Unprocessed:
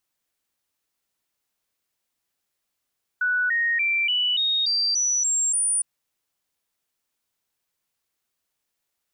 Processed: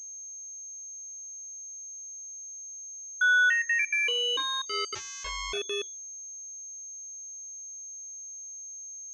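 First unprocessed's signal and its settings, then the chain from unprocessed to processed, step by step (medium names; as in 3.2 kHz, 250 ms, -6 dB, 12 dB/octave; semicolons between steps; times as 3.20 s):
stepped sine 1.48 kHz up, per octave 3, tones 9, 0.29 s, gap 0.00 s -19.5 dBFS
trance gate "xxxxxxxx.xx.x" 195 bpm -24 dB; simulated room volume 280 m³, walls furnished, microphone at 0.44 m; class-D stage that switches slowly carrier 6.4 kHz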